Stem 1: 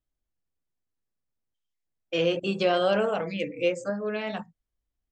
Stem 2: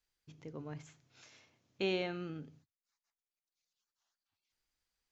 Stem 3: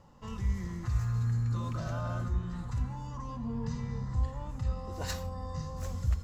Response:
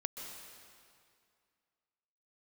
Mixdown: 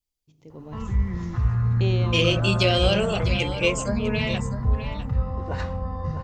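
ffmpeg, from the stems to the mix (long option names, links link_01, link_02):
-filter_complex "[0:a]lowshelf=frequency=400:gain=7,aexciter=amount=3.4:drive=7.2:freq=2100,volume=-13dB,asplit=2[link_01][link_02];[link_02]volume=-11.5dB[link_03];[1:a]equalizer=frequency=1600:width=1.5:gain=-12,volume=-5dB[link_04];[2:a]lowpass=2100,adelay=500,volume=-3dB,asplit=2[link_05][link_06];[link_06]volume=-11dB[link_07];[link_03][link_07]amix=inputs=2:normalize=0,aecho=0:1:652:1[link_08];[link_01][link_04][link_05][link_08]amix=inputs=4:normalize=0,dynaudnorm=framelen=330:gausssize=3:maxgain=11dB"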